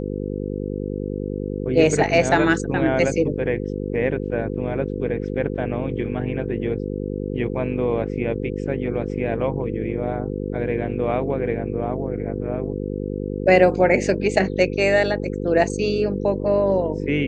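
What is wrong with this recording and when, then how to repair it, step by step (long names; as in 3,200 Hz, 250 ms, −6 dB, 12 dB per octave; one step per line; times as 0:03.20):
mains buzz 50 Hz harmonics 10 −27 dBFS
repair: hum removal 50 Hz, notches 10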